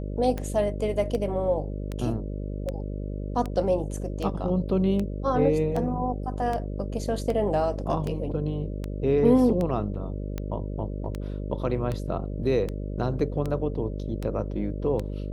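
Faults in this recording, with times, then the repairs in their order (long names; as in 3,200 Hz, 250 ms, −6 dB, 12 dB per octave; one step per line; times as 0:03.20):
mains buzz 50 Hz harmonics 12 −32 dBFS
scratch tick 78 rpm −18 dBFS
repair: click removal
hum removal 50 Hz, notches 12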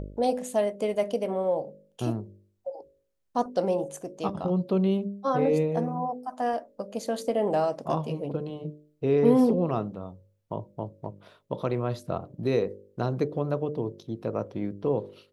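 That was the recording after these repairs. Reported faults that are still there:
none of them is left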